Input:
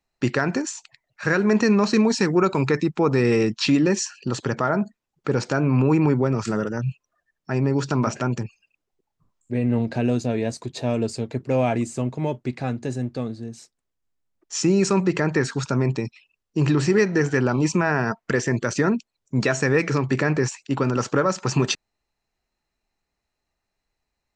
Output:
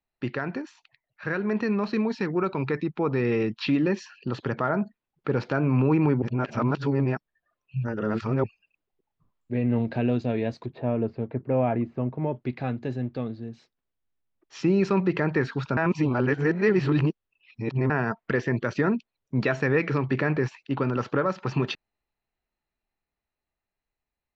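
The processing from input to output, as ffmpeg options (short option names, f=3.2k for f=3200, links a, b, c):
-filter_complex "[0:a]asettb=1/sr,asplit=3[a][b][c];[a]atrim=end=10.664[d];[b]atrim=start=10.66:end=12.36,asetpts=PTS-STARTPTS,afade=t=in:d=0.004:c=qsin,afade=t=out:st=1.696:d=0.004:c=qsin,lowpass=1.6k[e];[c]atrim=start=12.356[f];[d][e]acrossfade=d=0.004:c1=hsin:c2=qsin[g];[g][f]acrossfade=d=0.004:c1=qsin:c2=hsin,asplit=5[h][i][j][k][l];[h]atrim=end=6.222[m];[i]atrim=start=6.218:end=8.442,asetpts=PTS-STARTPTS,areverse[n];[j]atrim=start=8.438:end=15.772[o];[k]atrim=start=15.768:end=17.902,asetpts=PTS-STARTPTS,areverse[p];[l]atrim=start=17.898[q];[m][n]acrossfade=d=0.004:c1=hsin:c2=hsin[r];[r][o]acrossfade=d=0.004:c1=hsin:c2=hsin[s];[s][p]acrossfade=d=0.004:c1=hsin:c2=hsin[t];[t][q]acrossfade=d=0.004:c1=hsin:c2=hsin,lowpass=f=3.8k:w=0.5412,lowpass=f=3.8k:w=1.3066,dynaudnorm=f=770:g=9:m=6.5dB,volume=-8dB"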